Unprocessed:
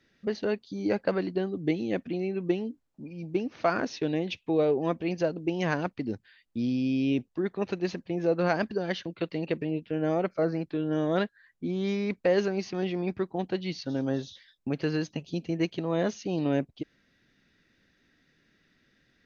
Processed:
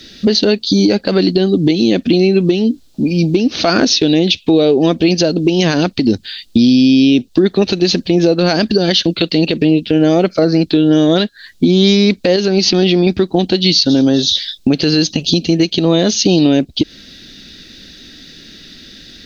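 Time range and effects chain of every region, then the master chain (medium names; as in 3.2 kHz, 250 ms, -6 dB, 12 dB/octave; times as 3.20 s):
12.36–13.07 s: low-pass 5.9 kHz + compression 1.5:1, threshold -40 dBFS
whole clip: ten-band graphic EQ 125 Hz -9 dB, 500 Hz -5 dB, 1 kHz -11 dB, 2 kHz -9 dB, 4 kHz +10 dB; compression, threshold -39 dBFS; loudness maximiser +32.5 dB; trim -1 dB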